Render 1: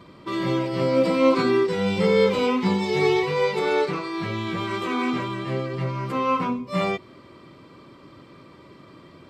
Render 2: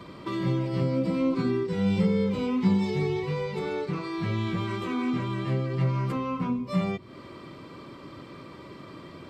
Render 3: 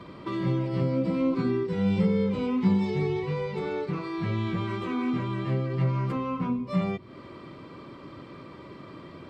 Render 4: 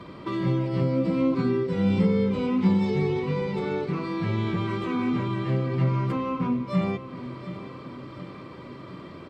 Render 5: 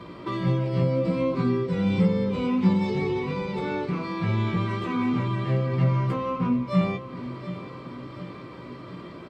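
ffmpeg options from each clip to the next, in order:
ffmpeg -i in.wav -filter_complex "[0:a]acrossover=split=230[link_01][link_02];[link_02]acompressor=threshold=-37dB:ratio=5[link_03];[link_01][link_03]amix=inputs=2:normalize=0,volume=3.5dB" out.wav
ffmpeg -i in.wav -af "highshelf=frequency=5900:gain=-11.5" out.wav
ffmpeg -i in.wav -af "aecho=1:1:725|1450|2175|2900|3625|4350:0.2|0.118|0.0695|0.041|0.0242|0.0143,volume=2dB" out.wav
ffmpeg -i in.wav -filter_complex "[0:a]asplit=2[link_01][link_02];[link_02]adelay=17,volume=-6dB[link_03];[link_01][link_03]amix=inputs=2:normalize=0" out.wav

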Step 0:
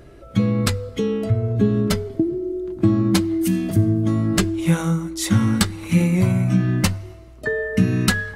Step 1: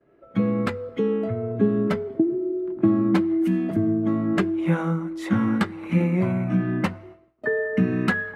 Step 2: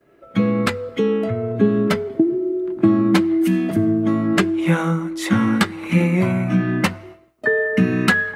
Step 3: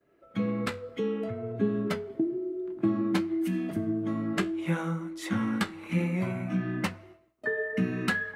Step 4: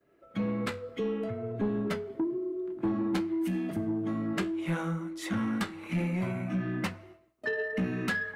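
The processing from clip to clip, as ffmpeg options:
ffmpeg -i in.wav -filter_complex "[0:a]acrossover=split=160 2400:gain=0.0891 1 0.0708[link_01][link_02][link_03];[link_01][link_02][link_03]amix=inputs=3:normalize=0,agate=range=-33dB:threshold=-39dB:ratio=3:detection=peak" out.wav
ffmpeg -i in.wav -af "highshelf=frequency=2400:gain=12,volume=4dB" out.wav
ffmpeg -i in.wav -af "flanger=delay=9.6:depth=8.1:regen=-67:speed=0.59:shape=triangular,volume=-7.5dB" out.wav
ffmpeg -i in.wav -af "asoftclip=type=tanh:threshold=-23dB" out.wav

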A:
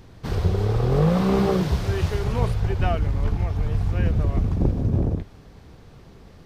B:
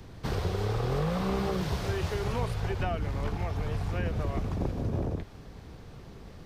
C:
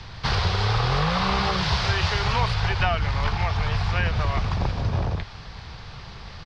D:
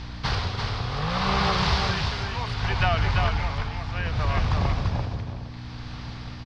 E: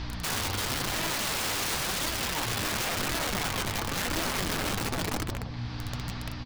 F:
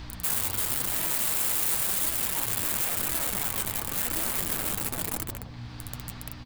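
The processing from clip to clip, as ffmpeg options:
ffmpeg -i in.wav -filter_complex "[0:a]acrossover=split=110|410|1000[link_01][link_02][link_03][link_04];[link_01]acompressor=threshold=-34dB:ratio=4[link_05];[link_02]acompressor=threshold=-35dB:ratio=4[link_06];[link_03]acompressor=threshold=-36dB:ratio=4[link_07];[link_04]acompressor=threshold=-39dB:ratio=4[link_08];[link_05][link_06][link_07][link_08]amix=inputs=4:normalize=0" out.wav
ffmpeg -i in.wav -af "firequalizer=gain_entry='entry(110,0);entry(190,-5);entry(270,-12);entry(890,5);entry(4800,10);entry(6900,-4);entry(12000,-25)':delay=0.05:min_phase=1,volume=7.5dB" out.wav
ffmpeg -i in.wav -af "tremolo=f=0.67:d=0.72,aeval=exprs='val(0)+0.0158*(sin(2*PI*60*n/s)+sin(2*PI*2*60*n/s)/2+sin(2*PI*3*60*n/s)/3+sin(2*PI*4*60*n/s)/4+sin(2*PI*5*60*n/s)/5)':channel_layout=same,aecho=1:1:341:0.596" out.wav
ffmpeg -i in.wav -af "acompressor=threshold=-26dB:ratio=5,aeval=exprs='(mod(21.1*val(0)+1,2)-1)/21.1':channel_layout=same,flanger=delay=3:depth=7.1:regen=63:speed=0.95:shape=sinusoidal,volume=5.5dB" out.wav
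ffmpeg -i in.wav -af "aexciter=amount=5.3:drive=3.7:freq=7600,volume=-5dB" out.wav

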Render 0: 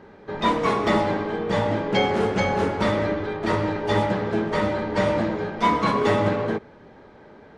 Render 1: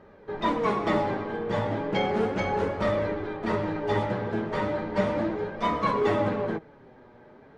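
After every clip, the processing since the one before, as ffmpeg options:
ffmpeg -i in.wav -af "highshelf=frequency=3400:gain=-7.5,flanger=delay=1.6:depth=6.7:regen=52:speed=0.35:shape=sinusoidal" out.wav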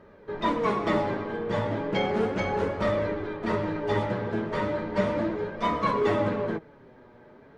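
ffmpeg -i in.wav -af "bandreject=frequency=790:width=12" out.wav

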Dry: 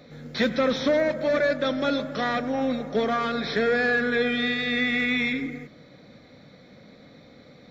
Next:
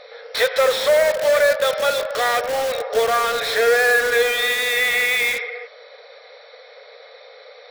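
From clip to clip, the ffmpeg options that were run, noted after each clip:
ffmpeg -i in.wav -filter_complex "[0:a]afftfilt=real='re*between(b*sr/4096,420,5700)':imag='im*between(b*sr/4096,420,5700)':win_size=4096:overlap=0.75,asplit=2[link_01][link_02];[link_02]aeval=exprs='(mod(25.1*val(0)+1,2)-1)/25.1':channel_layout=same,volume=-6dB[link_03];[link_01][link_03]amix=inputs=2:normalize=0,volume=7dB" out.wav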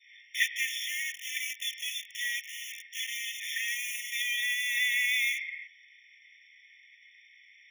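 ffmpeg -i in.wav -af "adynamicequalizer=threshold=0.0316:dfrequency=1300:dqfactor=0.78:tfrequency=1300:tqfactor=0.78:attack=5:release=100:ratio=0.375:range=3:mode=cutabove:tftype=bell,aeval=exprs='0.473*(cos(1*acos(clip(val(0)/0.473,-1,1)))-cos(1*PI/2))+0.075*(cos(3*acos(clip(val(0)/0.473,-1,1)))-cos(3*PI/2))':channel_layout=same,afftfilt=real='re*eq(mod(floor(b*sr/1024/1800),2),1)':imag='im*eq(mod(floor(b*sr/1024/1800),2),1)':win_size=1024:overlap=0.75" out.wav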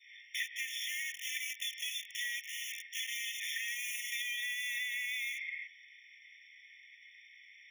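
ffmpeg -i in.wav -af "acompressor=threshold=-35dB:ratio=6" out.wav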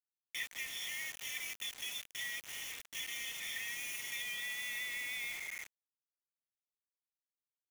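ffmpeg -i in.wav -af "acrusher=bits=6:mix=0:aa=0.000001,volume=-3.5dB" out.wav

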